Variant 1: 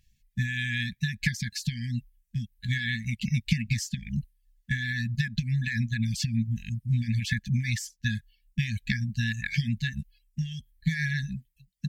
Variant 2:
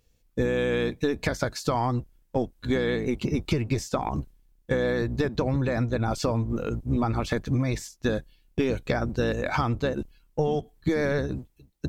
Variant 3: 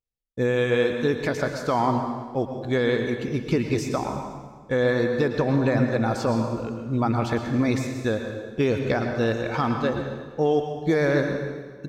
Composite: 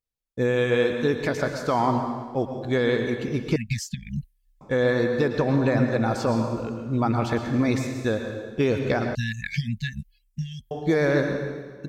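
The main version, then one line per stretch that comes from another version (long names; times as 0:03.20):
3
0:03.56–0:04.61: punch in from 1
0:09.15–0:10.71: punch in from 1
not used: 2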